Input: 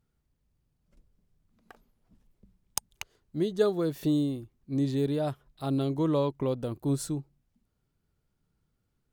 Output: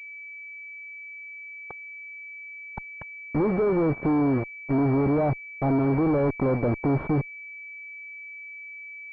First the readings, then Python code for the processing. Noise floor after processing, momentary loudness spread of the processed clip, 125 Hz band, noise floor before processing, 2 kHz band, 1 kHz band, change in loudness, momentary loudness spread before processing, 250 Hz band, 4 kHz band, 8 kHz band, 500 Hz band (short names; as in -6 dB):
-41 dBFS, 16 LU, +5.5 dB, -78 dBFS, +16.5 dB, +9.0 dB, +5.5 dB, 10 LU, +5.5 dB, under -15 dB, under -30 dB, +4.5 dB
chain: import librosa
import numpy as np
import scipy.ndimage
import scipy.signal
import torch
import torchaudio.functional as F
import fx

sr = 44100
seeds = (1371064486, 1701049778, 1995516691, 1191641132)

y = fx.fuzz(x, sr, gain_db=48.0, gate_db=-41.0)
y = fx.pwm(y, sr, carrier_hz=2300.0)
y = y * 10.0 ** (-7.0 / 20.0)